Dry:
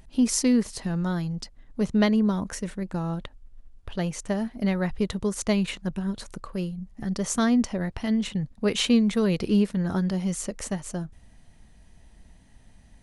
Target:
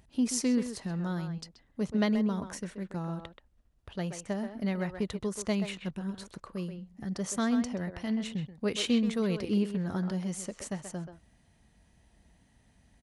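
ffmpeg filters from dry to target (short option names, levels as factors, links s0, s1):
-filter_complex "[0:a]highpass=54,asplit=2[s0][s1];[s1]adelay=130,highpass=300,lowpass=3400,asoftclip=type=hard:threshold=0.126,volume=0.447[s2];[s0][s2]amix=inputs=2:normalize=0,volume=0.473"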